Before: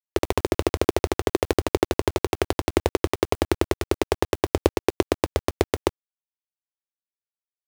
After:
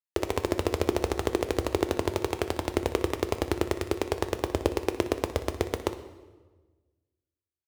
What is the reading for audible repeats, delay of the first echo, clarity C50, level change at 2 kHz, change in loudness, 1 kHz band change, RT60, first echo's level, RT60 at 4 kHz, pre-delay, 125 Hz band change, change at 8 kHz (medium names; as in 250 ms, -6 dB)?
1, 61 ms, 10.5 dB, -5.0 dB, -5.0 dB, -5.0 dB, 1.3 s, -14.5 dB, 1.0 s, 3 ms, -4.5 dB, -5.0 dB